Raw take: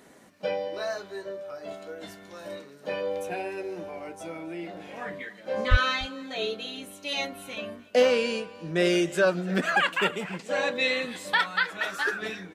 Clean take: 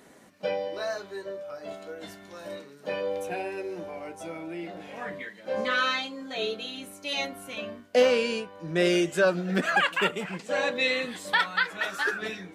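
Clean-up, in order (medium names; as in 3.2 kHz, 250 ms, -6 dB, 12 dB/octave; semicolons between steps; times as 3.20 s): 5.70–5.82 s: high-pass 140 Hz 24 dB/octave; inverse comb 291 ms -22 dB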